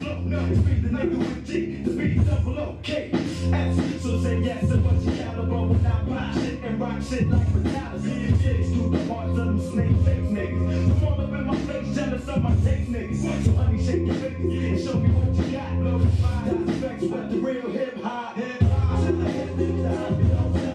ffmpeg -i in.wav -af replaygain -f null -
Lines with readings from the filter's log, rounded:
track_gain = +7.8 dB
track_peak = 0.352